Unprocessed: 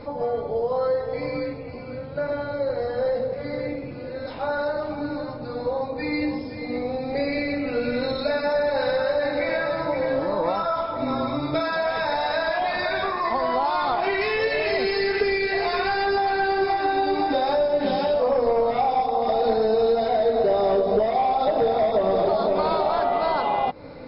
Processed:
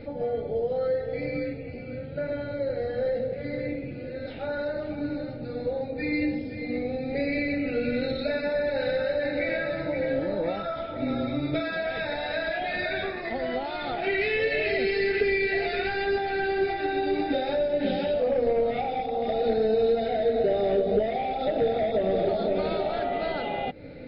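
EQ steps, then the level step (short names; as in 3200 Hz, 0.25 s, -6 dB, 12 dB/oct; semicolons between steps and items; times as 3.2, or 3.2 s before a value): fixed phaser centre 2500 Hz, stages 4; 0.0 dB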